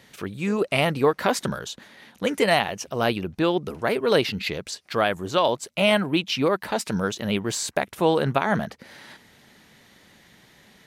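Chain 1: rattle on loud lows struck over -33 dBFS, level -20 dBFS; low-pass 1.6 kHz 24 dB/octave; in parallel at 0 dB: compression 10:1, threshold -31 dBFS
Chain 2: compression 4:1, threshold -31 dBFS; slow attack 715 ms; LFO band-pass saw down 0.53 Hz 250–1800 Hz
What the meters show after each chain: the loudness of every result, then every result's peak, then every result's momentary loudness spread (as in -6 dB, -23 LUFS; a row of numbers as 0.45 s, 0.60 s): -23.0 LUFS, -53.0 LUFS; -5.0 dBFS, -31.0 dBFS; 9 LU, 15 LU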